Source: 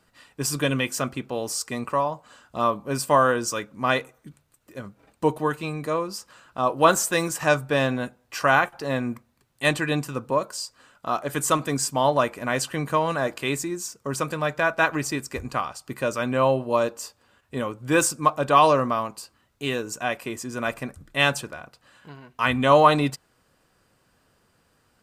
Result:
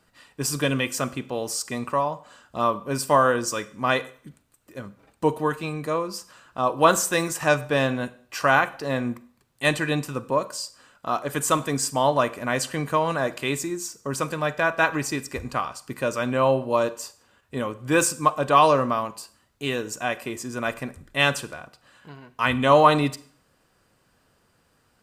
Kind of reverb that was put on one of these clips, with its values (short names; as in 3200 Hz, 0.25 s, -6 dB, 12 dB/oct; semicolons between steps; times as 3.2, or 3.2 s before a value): Schroeder reverb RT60 0.51 s, combs from 33 ms, DRR 16 dB